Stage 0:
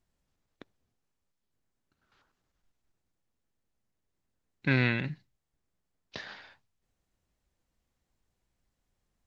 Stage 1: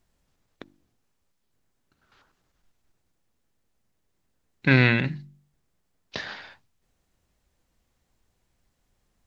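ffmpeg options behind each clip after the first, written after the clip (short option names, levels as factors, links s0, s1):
-af "bandreject=f=48.46:t=h:w=4,bandreject=f=96.92:t=h:w=4,bandreject=f=145.38:t=h:w=4,bandreject=f=193.84:t=h:w=4,bandreject=f=242.3:t=h:w=4,bandreject=f=290.76:t=h:w=4,bandreject=f=339.22:t=h:w=4,volume=2.51"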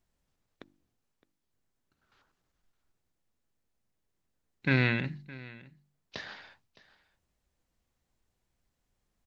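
-af "aecho=1:1:614:0.1,volume=0.422"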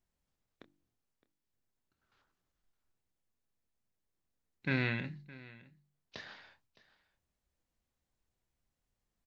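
-filter_complex "[0:a]asplit=2[s0][s1];[s1]adelay=27,volume=0.282[s2];[s0][s2]amix=inputs=2:normalize=0,volume=0.473"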